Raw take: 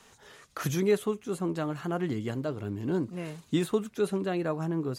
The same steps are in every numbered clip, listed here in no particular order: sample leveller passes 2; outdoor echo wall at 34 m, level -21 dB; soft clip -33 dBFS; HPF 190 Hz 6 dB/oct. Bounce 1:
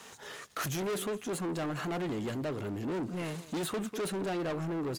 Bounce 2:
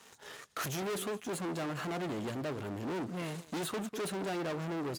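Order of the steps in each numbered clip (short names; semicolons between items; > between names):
outdoor echo > soft clip > HPF > sample leveller; outdoor echo > sample leveller > soft clip > HPF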